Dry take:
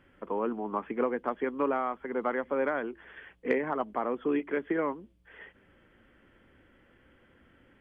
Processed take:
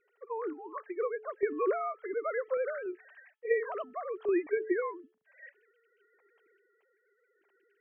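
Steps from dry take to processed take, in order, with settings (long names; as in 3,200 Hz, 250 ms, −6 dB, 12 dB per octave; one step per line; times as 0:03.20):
three sine waves on the formant tracks
sample-and-hold tremolo
hum removal 435.1 Hz, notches 4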